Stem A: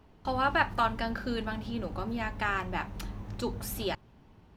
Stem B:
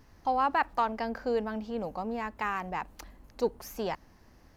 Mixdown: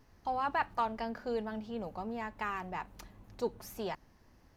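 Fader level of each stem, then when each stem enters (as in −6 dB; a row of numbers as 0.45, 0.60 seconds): −15.0, −5.5 decibels; 0.00, 0.00 seconds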